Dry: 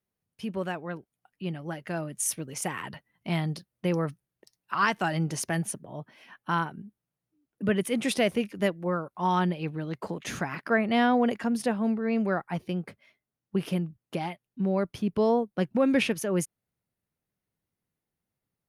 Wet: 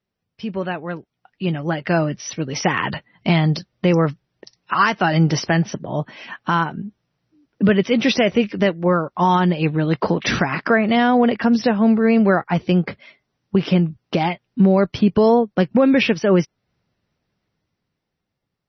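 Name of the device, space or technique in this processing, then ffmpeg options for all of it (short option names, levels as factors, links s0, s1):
low-bitrate web radio: -af "dynaudnorm=f=480:g=7:m=3.35,alimiter=limit=0.224:level=0:latency=1:release=387,volume=2.24" -ar 24000 -c:a libmp3lame -b:a 24k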